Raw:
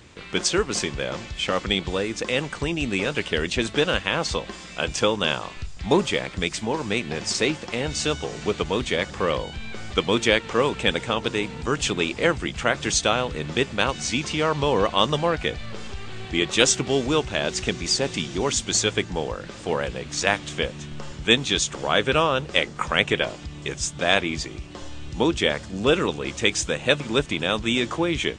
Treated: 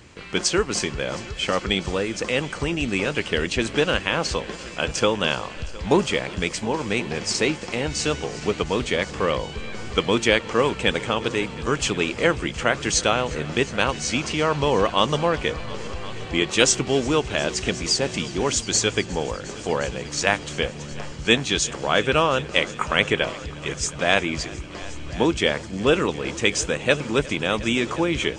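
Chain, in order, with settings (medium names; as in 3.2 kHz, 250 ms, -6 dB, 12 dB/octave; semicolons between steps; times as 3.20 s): band-stop 3.6 kHz, Q 12; on a send: multi-head delay 358 ms, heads all three, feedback 51%, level -22 dB; on the sum: trim +1 dB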